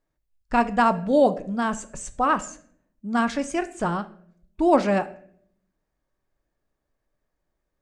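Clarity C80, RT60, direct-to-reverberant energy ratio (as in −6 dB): 19.5 dB, 0.60 s, 11.0 dB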